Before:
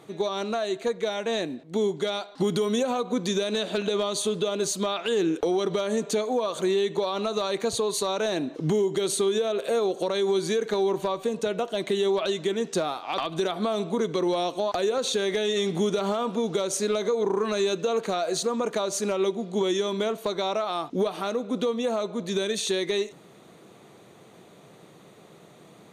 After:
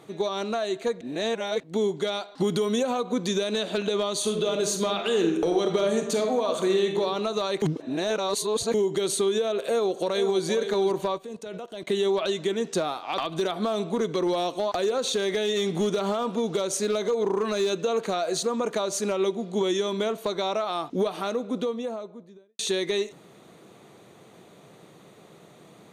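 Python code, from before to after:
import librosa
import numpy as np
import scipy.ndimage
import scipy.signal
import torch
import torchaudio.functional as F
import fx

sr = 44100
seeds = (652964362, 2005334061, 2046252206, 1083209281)

y = fx.reverb_throw(x, sr, start_s=4.15, length_s=2.84, rt60_s=0.87, drr_db=4.0)
y = fx.echo_throw(y, sr, start_s=9.59, length_s=0.85, ms=470, feedback_pct=15, wet_db=-9.0)
y = fx.level_steps(y, sr, step_db=18, at=(11.17, 11.88), fade=0.02)
y = fx.overload_stage(y, sr, gain_db=19.0, at=(13.18, 17.7))
y = fx.studio_fade_out(y, sr, start_s=21.28, length_s=1.31)
y = fx.edit(y, sr, fx.reverse_span(start_s=1.01, length_s=0.59),
    fx.reverse_span(start_s=7.62, length_s=1.12), tone=tone)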